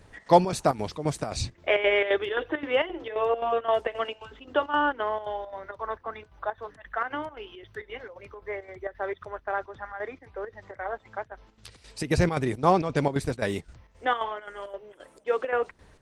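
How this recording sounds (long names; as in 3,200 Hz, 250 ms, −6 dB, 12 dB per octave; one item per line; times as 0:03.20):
chopped level 3.8 Hz, depth 65%, duty 70%
Opus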